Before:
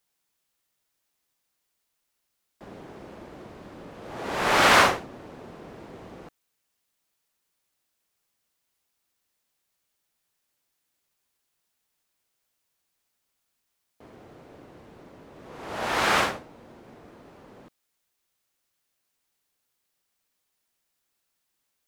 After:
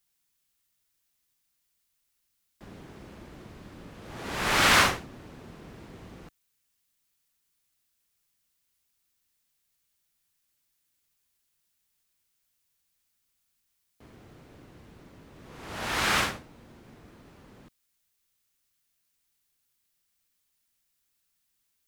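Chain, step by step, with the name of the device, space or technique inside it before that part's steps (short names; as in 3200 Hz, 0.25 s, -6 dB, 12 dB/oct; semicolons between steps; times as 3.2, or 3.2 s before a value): smiley-face EQ (low shelf 100 Hz +5.5 dB; bell 610 Hz -8 dB 2.1 oct; high shelf 8600 Hz +3.5 dB)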